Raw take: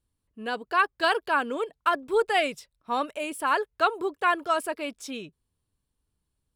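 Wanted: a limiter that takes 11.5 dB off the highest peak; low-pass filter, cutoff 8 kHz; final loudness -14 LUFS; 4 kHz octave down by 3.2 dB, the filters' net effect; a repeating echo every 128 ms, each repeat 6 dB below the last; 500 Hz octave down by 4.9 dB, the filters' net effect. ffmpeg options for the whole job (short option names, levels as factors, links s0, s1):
-af "lowpass=8000,equalizer=f=500:t=o:g=-6.5,equalizer=f=4000:t=o:g=-4.5,alimiter=limit=0.0708:level=0:latency=1,aecho=1:1:128|256|384|512|640|768:0.501|0.251|0.125|0.0626|0.0313|0.0157,volume=8.91"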